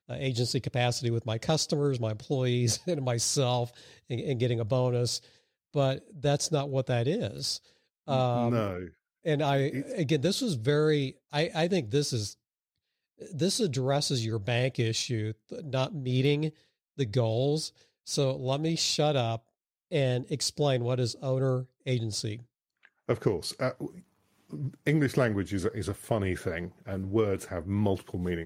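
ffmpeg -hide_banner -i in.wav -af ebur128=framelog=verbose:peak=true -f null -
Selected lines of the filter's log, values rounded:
Integrated loudness:
  I:         -29.5 LUFS
  Threshold: -39.9 LUFS
Loudness range:
  LRA:         2.6 LU
  Threshold: -50.0 LUFS
  LRA low:   -31.3 LUFS
  LRA high:  -28.7 LUFS
True peak:
  Peak:      -12.3 dBFS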